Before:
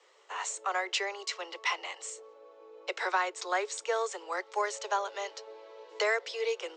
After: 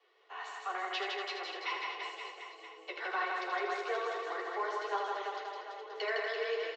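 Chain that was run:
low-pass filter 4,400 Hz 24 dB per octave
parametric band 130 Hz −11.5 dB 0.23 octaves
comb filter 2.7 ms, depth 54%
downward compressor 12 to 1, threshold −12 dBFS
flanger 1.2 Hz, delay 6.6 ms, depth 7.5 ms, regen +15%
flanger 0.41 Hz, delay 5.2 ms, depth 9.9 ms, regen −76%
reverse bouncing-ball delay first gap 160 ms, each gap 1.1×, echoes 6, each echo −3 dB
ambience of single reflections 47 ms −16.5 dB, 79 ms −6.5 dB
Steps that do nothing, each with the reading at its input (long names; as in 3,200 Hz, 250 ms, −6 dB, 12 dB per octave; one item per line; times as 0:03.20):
parametric band 130 Hz: nothing at its input below 320 Hz
downward compressor, threshold −12 dBFS: peak of its input −15.5 dBFS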